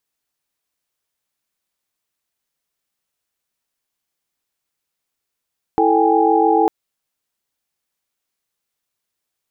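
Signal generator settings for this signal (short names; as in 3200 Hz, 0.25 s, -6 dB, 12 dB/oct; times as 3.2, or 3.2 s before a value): chord E4/A4/G5/G#5 sine, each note -17 dBFS 0.90 s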